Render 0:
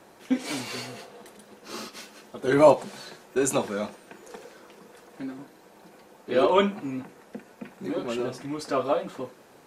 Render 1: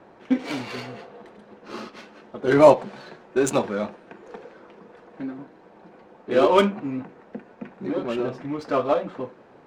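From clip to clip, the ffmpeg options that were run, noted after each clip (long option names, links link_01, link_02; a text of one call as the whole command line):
ffmpeg -i in.wav -af "adynamicsmooth=sensitivity=3.5:basefreq=2300,volume=3.5dB" out.wav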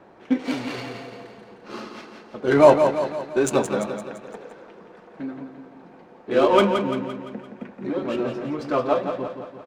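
ffmpeg -i in.wav -af "aecho=1:1:171|342|513|684|855|1026:0.447|0.232|0.121|0.0628|0.0327|0.017" out.wav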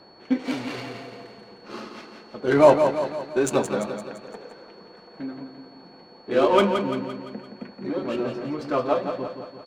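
ffmpeg -i in.wav -af "aeval=exprs='val(0)+0.00251*sin(2*PI*4400*n/s)':channel_layout=same,volume=-1.5dB" out.wav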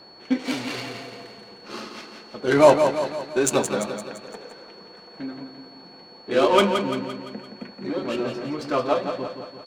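ffmpeg -i in.wav -af "highshelf=frequency=2600:gain=8.5" out.wav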